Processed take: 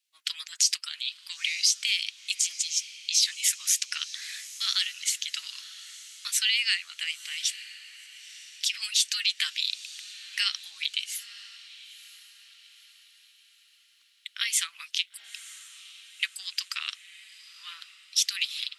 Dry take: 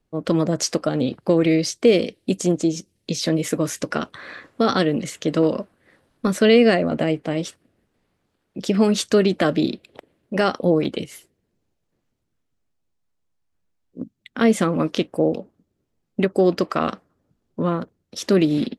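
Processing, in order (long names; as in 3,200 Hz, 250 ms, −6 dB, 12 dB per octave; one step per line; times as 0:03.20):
inverse Chebyshev high-pass filter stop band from 570 Hz, stop band 70 dB
brickwall limiter −19 dBFS, peak gain reduction 8.5 dB
harmonic and percussive parts rebalanced percussive +5 dB
feedback delay with all-pass diffusion 962 ms, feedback 45%, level −16 dB
level +3.5 dB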